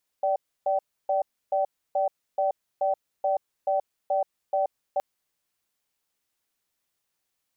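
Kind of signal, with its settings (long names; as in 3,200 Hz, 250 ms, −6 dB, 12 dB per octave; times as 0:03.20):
tone pair in a cadence 584 Hz, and 770 Hz, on 0.13 s, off 0.30 s, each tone −24 dBFS 4.77 s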